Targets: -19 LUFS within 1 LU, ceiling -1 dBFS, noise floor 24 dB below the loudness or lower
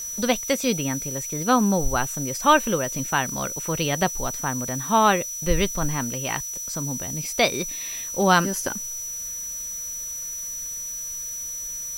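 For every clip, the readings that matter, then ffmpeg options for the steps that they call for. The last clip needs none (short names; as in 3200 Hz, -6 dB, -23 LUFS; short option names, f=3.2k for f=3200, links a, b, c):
steady tone 5900 Hz; tone level -30 dBFS; noise floor -33 dBFS; noise floor target -48 dBFS; loudness -24.0 LUFS; peak -3.5 dBFS; loudness target -19.0 LUFS
-> -af "bandreject=f=5.9k:w=30"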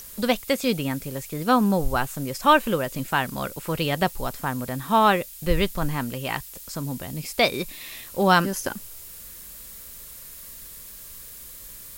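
steady tone none; noise floor -42 dBFS; noise floor target -49 dBFS
-> -af "afftdn=nr=7:nf=-42"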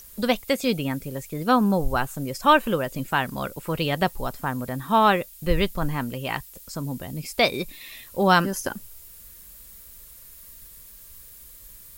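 noise floor -46 dBFS; noise floor target -49 dBFS
-> -af "afftdn=nr=6:nf=-46"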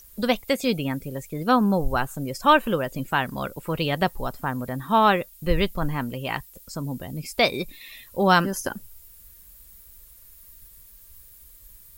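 noise floor -50 dBFS; loudness -24.5 LUFS; peak -3.5 dBFS; loudness target -19.0 LUFS
-> -af "volume=5.5dB,alimiter=limit=-1dB:level=0:latency=1"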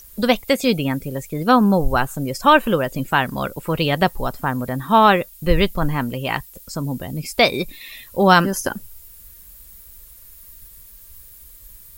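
loudness -19.0 LUFS; peak -1.0 dBFS; noise floor -44 dBFS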